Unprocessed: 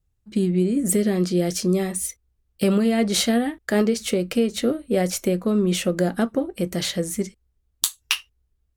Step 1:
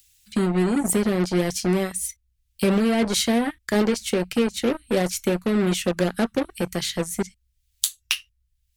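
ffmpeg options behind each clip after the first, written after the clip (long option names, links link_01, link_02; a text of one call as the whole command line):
ffmpeg -i in.wav -filter_complex "[0:a]acrossover=split=160|1500|2100[link_01][link_02][link_03][link_04];[link_02]acrusher=bits=3:mix=0:aa=0.5[link_05];[link_04]acompressor=mode=upward:threshold=-35dB:ratio=2.5[link_06];[link_01][link_05][link_03][link_06]amix=inputs=4:normalize=0,volume=-1dB" out.wav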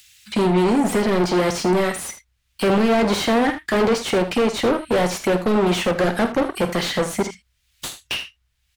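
ffmpeg -i in.wav -filter_complex "[0:a]asplit=2[link_01][link_02];[link_02]highpass=frequency=720:poles=1,volume=35dB,asoftclip=type=tanh:threshold=-1.5dB[link_03];[link_01][link_03]amix=inputs=2:normalize=0,lowpass=frequency=1400:poles=1,volume=-6dB,aecho=1:1:50|79:0.211|0.237,volume=-7.5dB" out.wav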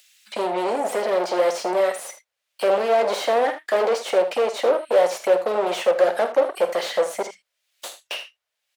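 ffmpeg -i in.wav -af "highpass=frequency=560:width_type=q:width=3.6,volume=-5.5dB" out.wav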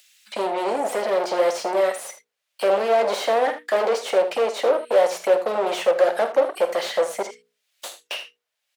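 ffmpeg -i in.wav -af "bandreject=frequency=60:width_type=h:width=6,bandreject=frequency=120:width_type=h:width=6,bandreject=frequency=180:width_type=h:width=6,bandreject=frequency=240:width_type=h:width=6,bandreject=frequency=300:width_type=h:width=6,bandreject=frequency=360:width_type=h:width=6,bandreject=frequency=420:width_type=h:width=6,bandreject=frequency=480:width_type=h:width=6" out.wav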